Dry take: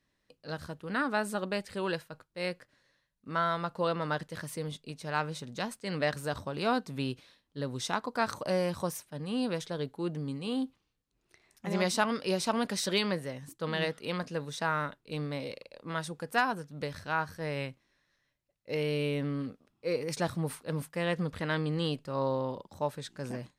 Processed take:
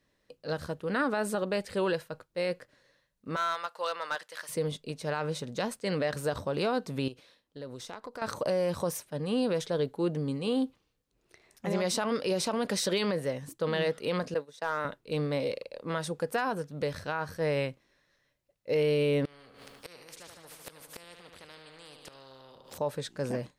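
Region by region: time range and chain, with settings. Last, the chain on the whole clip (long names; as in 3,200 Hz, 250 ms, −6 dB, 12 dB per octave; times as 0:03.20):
0:03.36–0:04.49: high-pass filter 1,100 Hz + gain into a clipping stage and back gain 28.5 dB
0:07.08–0:08.22: low-shelf EQ 140 Hz −6 dB + downward compressor 5 to 1, threshold −40 dBFS + tube saturation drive 28 dB, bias 0.7
0:14.34–0:14.85: downward expander −31 dBFS + high-pass filter 240 Hz + hard clipping −21 dBFS
0:19.25–0:22.78: repeating echo 75 ms, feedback 56%, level −11 dB + gate with flip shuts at −30 dBFS, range −26 dB + every bin compressed towards the loudest bin 4 to 1
whole clip: parametric band 500 Hz +6.5 dB 0.73 octaves; brickwall limiter −23.5 dBFS; level +3 dB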